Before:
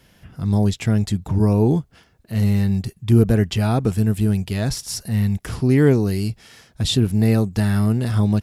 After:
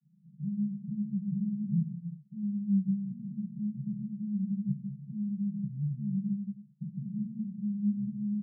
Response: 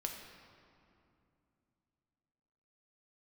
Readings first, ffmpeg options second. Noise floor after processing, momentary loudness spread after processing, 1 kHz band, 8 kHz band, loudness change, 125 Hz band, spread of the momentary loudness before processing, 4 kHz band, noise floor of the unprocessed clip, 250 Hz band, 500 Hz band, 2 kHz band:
-60 dBFS, 8 LU, under -40 dB, under -40 dB, -14.5 dB, -18.0 dB, 8 LU, under -40 dB, -55 dBFS, -11.0 dB, under -40 dB, under -40 dB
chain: -filter_complex "[0:a]alimiter=limit=-13.5dB:level=0:latency=1:release=157,asuperpass=centerf=170:order=12:qfactor=2.2[a];[1:a]atrim=start_sample=2205,afade=t=out:st=0.44:d=0.01,atrim=end_sample=19845[b];[a][b]afir=irnorm=-1:irlink=0,volume=-5dB"

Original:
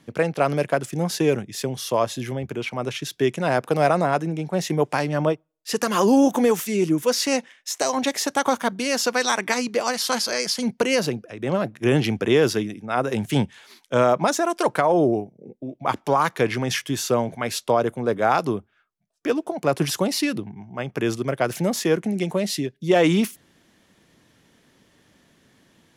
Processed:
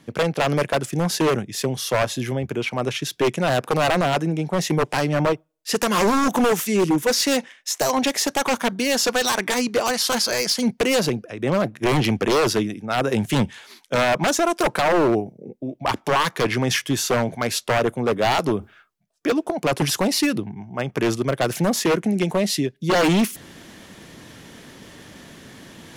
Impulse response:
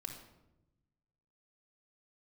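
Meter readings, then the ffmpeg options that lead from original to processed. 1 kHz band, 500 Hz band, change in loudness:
+1.0 dB, 0.0 dB, +1.5 dB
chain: -af "areverse,acompressor=mode=upward:threshold=-34dB:ratio=2.5,areverse,aeval=exprs='0.158*(abs(mod(val(0)/0.158+3,4)-2)-1)':c=same,volume=3.5dB"

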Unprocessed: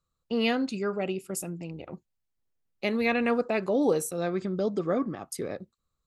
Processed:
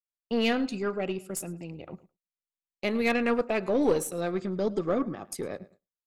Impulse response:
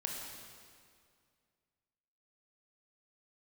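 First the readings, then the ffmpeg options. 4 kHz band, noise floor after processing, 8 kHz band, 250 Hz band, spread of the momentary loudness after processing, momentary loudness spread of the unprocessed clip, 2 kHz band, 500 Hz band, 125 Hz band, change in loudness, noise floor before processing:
0.0 dB, under -85 dBFS, -0.5 dB, -0.5 dB, 15 LU, 14 LU, 0.0 dB, 0.0 dB, -1.0 dB, 0.0 dB, -81 dBFS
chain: -filter_complex "[0:a]asplit=2[a][b];[b]adelay=107,lowpass=f=4.4k:p=1,volume=-18.5dB,asplit=2[c][d];[d]adelay=107,lowpass=f=4.4k:p=1,volume=0.32,asplit=2[e][f];[f]adelay=107,lowpass=f=4.4k:p=1,volume=0.32[g];[a][c][e][g]amix=inputs=4:normalize=0,aeval=exprs='0.224*(cos(1*acos(clip(val(0)/0.224,-1,1)))-cos(1*PI/2))+0.0178*(cos(4*acos(clip(val(0)/0.224,-1,1)))-cos(4*PI/2))+0.0112*(cos(5*acos(clip(val(0)/0.224,-1,1)))-cos(5*PI/2))+0.0126*(cos(7*acos(clip(val(0)/0.224,-1,1)))-cos(7*PI/2))':c=same,agate=range=-33dB:threshold=-50dB:ratio=3:detection=peak"

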